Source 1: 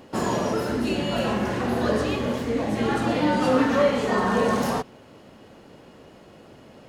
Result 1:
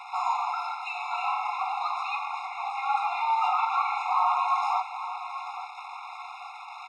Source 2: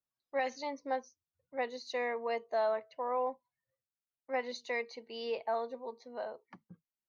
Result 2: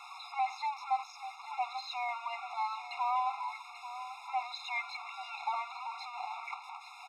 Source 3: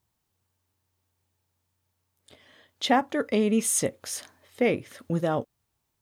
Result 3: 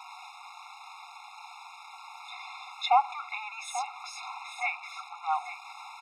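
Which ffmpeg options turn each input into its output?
ffmpeg -i in.wav -filter_complex "[0:a]aeval=exprs='val(0)+0.5*0.0266*sgn(val(0))':channel_layout=same,lowpass=2900,asplit=2[link_01][link_02];[link_02]aecho=0:1:838|1676|2514:0.251|0.0829|0.0274[link_03];[link_01][link_03]amix=inputs=2:normalize=0,afftfilt=real='re*eq(mod(floor(b*sr/1024/700),2),1)':imag='im*eq(mod(floor(b*sr/1024/700),2),1)':win_size=1024:overlap=0.75,volume=2.5dB" out.wav

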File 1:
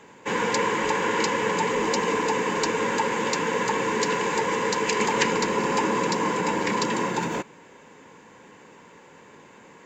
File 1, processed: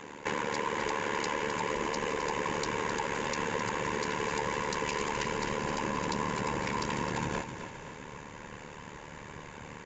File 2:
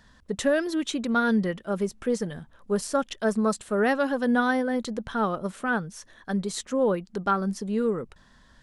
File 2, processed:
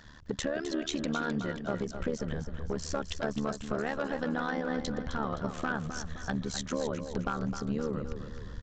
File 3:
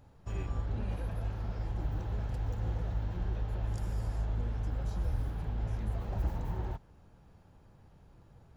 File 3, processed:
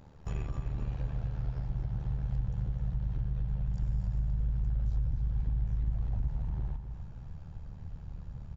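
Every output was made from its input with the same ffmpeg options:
ffmpeg -i in.wav -filter_complex "[0:a]asubboost=boost=6:cutoff=110,asplit=2[link_01][link_02];[link_02]alimiter=limit=-17.5dB:level=0:latency=1:release=23,volume=3dB[link_03];[link_01][link_03]amix=inputs=2:normalize=0,acompressor=threshold=-26dB:ratio=10,tremolo=f=74:d=0.889,aresample=16000,aeval=exprs='clip(val(0),-1,0.0562)':channel_layout=same,aresample=44100,aecho=1:1:260|520|780|1040|1300:0.355|0.156|0.0687|0.0302|0.0133" out.wav

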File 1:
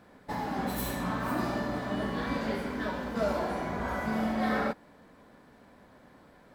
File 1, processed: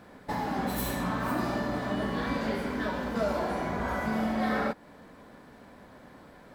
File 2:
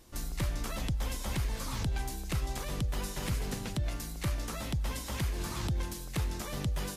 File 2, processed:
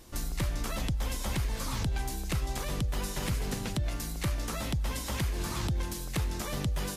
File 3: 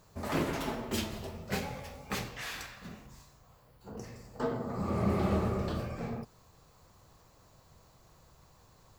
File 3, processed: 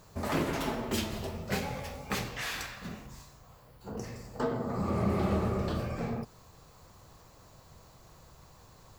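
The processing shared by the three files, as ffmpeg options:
ffmpeg -i in.wav -af "acompressor=threshold=-38dB:ratio=1.5,volume=5dB" out.wav

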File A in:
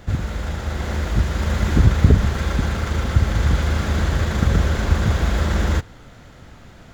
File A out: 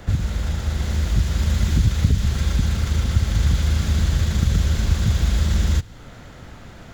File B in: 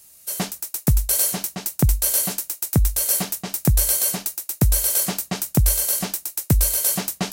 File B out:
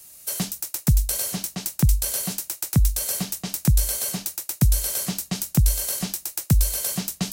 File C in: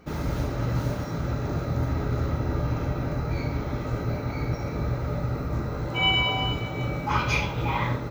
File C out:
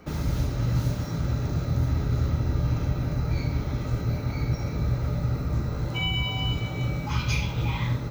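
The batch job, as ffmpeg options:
ffmpeg -i in.wav -filter_complex "[0:a]acrossover=split=210|2800|7500[link_01][link_02][link_03][link_04];[link_01]acompressor=threshold=-17dB:ratio=4[link_05];[link_02]acompressor=threshold=-41dB:ratio=4[link_06];[link_03]acompressor=threshold=-35dB:ratio=4[link_07];[link_04]acompressor=threshold=-31dB:ratio=4[link_08];[link_05][link_06][link_07][link_08]amix=inputs=4:normalize=0,volume=3dB" out.wav

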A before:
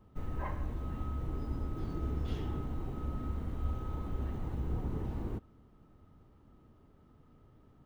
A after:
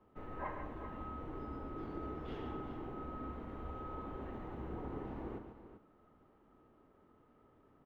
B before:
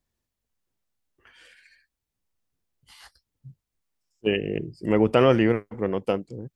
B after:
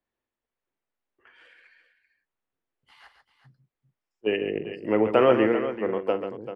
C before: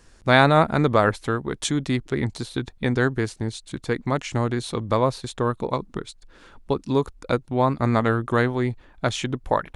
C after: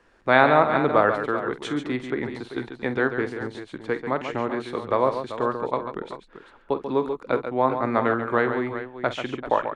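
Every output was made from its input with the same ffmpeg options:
ffmpeg -i in.wav -filter_complex "[0:a]acrossover=split=260 3000:gain=0.2 1 0.112[link_01][link_02][link_03];[link_01][link_02][link_03]amix=inputs=3:normalize=0,asplit=2[link_04][link_05];[link_05]aecho=0:1:47|139|389:0.224|0.376|0.266[link_06];[link_04][link_06]amix=inputs=2:normalize=0" out.wav

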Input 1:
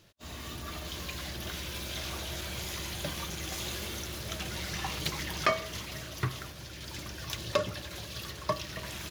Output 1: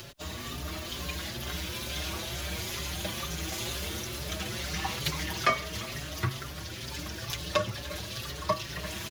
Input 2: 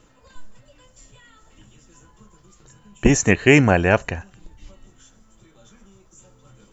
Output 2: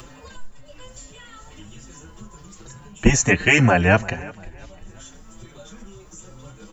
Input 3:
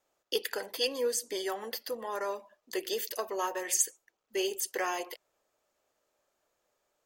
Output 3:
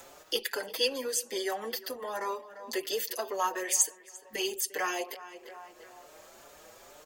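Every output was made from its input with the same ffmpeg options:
ffmpeg -i in.wav -filter_complex "[0:a]acrossover=split=330|490|7300[link_01][link_02][link_03][link_04];[link_02]acompressor=threshold=-47dB:ratio=6[link_05];[link_01][link_05][link_03][link_04]amix=inputs=4:normalize=0,asplit=2[link_06][link_07];[link_07]adelay=346,lowpass=frequency=3200:poles=1,volume=-19.5dB,asplit=2[link_08][link_09];[link_09]adelay=346,lowpass=frequency=3200:poles=1,volume=0.31,asplit=2[link_10][link_11];[link_11]adelay=346,lowpass=frequency=3200:poles=1,volume=0.31[link_12];[link_06][link_08][link_10][link_12]amix=inputs=4:normalize=0,acompressor=mode=upward:threshold=-35dB:ratio=2.5,asplit=2[link_13][link_14];[link_14]adelay=5.5,afreqshift=2.2[link_15];[link_13][link_15]amix=inputs=2:normalize=1,volume=5dB" out.wav

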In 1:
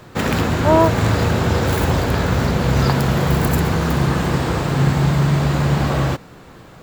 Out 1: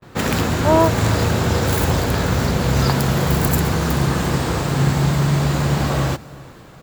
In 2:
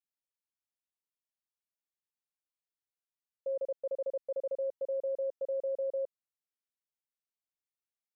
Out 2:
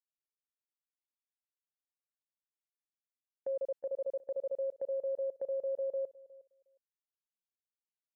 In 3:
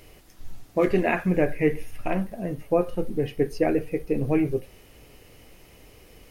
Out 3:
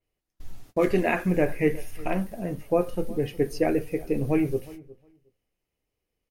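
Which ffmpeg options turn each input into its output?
ffmpeg -i in.wav -filter_complex "[0:a]agate=range=-31dB:threshold=-43dB:ratio=16:detection=peak,asplit=2[link_01][link_02];[link_02]adelay=361,lowpass=frequency=1900:poles=1,volume=-20dB,asplit=2[link_03][link_04];[link_04]adelay=361,lowpass=frequency=1900:poles=1,volume=0.15[link_05];[link_01][link_03][link_05]amix=inputs=3:normalize=0,adynamicequalizer=threshold=0.00708:dfrequency=4300:dqfactor=0.7:tfrequency=4300:tqfactor=0.7:attack=5:release=100:ratio=0.375:range=3:mode=boostabove:tftype=highshelf,volume=-1dB" out.wav

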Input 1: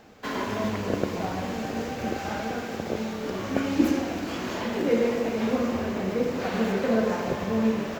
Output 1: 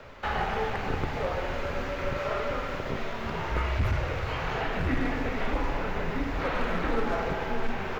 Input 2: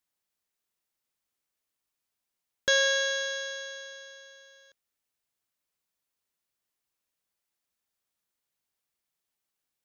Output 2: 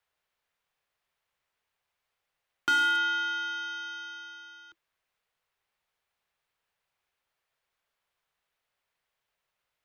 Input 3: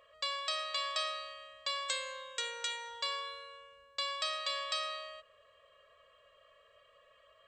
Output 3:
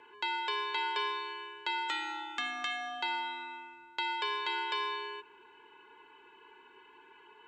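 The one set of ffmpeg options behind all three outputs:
ffmpeg -i in.wav -filter_complex "[0:a]acrossover=split=210 3600:gain=0.141 1 0.178[link_01][link_02][link_03];[link_01][link_02][link_03]amix=inputs=3:normalize=0,bandreject=frequency=540:width=16,acrossover=split=3800[link_04][link_05];[link_05]acompressor=threshold=-53dB:ratio=4:attack=1:release=60[link_06];[link_04][link_06]amix=inputs=2:normalize=0,equalizer=frequency=450:width=2.1:gain=-11,asplit=2[link_07][link_08];[link_08]acompressor=threshold=-46dB:ratio=6,volume=1dB[link_09];[link_07][link_09]amix=inputs=2:normalize=0,afreqshift=-210,volume=23.5dB,asoftclip=hard,volume=-23.5dB,volume=3dB" out.wav

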